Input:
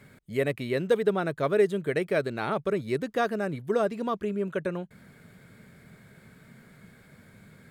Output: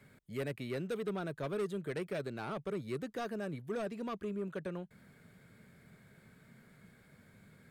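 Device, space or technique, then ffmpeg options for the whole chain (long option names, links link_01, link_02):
one-band saturation: -filter_complex "[0:a]acrossover=split=250|4300[link_01][link_02][link_03];[link_02]asoftclip=type=tanh:threshold=-27.5dB[link_04];[link_01][link_04][link_03]amix=inputs=3:normalize=0,volume=-7.5dB"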